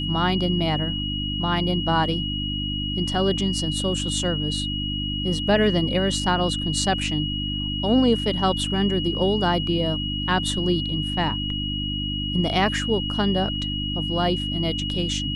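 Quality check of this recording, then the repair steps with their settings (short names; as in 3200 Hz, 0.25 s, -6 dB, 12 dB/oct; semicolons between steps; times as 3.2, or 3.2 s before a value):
hum 50 Hz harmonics 6 -29 dBFS
tone 2900 Hz -28 dBFS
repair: de-hum 50 Hz, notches 6; notch 2900 Hz, Q 30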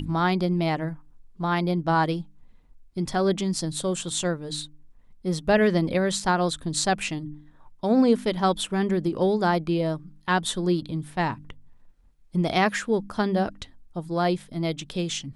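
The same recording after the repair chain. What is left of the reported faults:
none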